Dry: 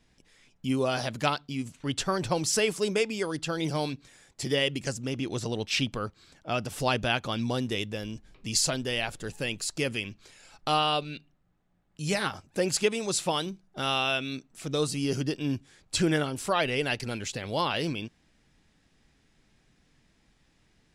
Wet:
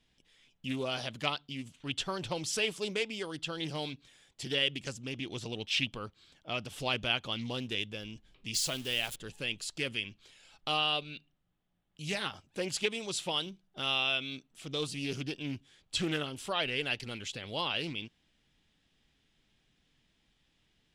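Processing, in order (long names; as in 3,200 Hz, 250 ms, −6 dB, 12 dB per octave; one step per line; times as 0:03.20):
0:08.54–0:09.16: spike at every zero crossing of −27.5 dBFS
parametric band 3,200 Hz +10.5 dB 0.63 octaves
highs frequency-modulated by the lows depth 0.22 ms
level −8.5 dB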